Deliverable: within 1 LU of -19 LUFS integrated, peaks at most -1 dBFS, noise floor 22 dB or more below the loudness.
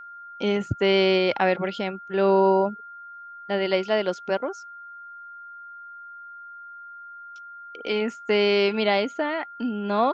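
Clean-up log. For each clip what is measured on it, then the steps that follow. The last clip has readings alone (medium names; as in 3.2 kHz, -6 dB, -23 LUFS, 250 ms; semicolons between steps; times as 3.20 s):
steady tone 1.4 kHz; tone level -39 dBFS; loudness -23.5 LUFS; peak level -8.5 dBFS; loudness target -19.0 LUFS
-> band-stop 1.4 kHz, Q 30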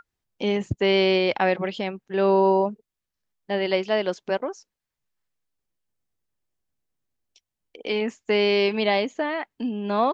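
steady tone not found; loudness -23.5 LUFS; peak level -8.5 dBFS; loudness target -19.0 LUFS
-> trim +4.5 dB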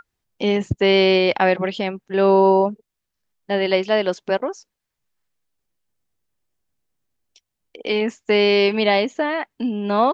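loudness -19.0 LUFS; peak level -4.0 dBFS; noise floor -81 dBFS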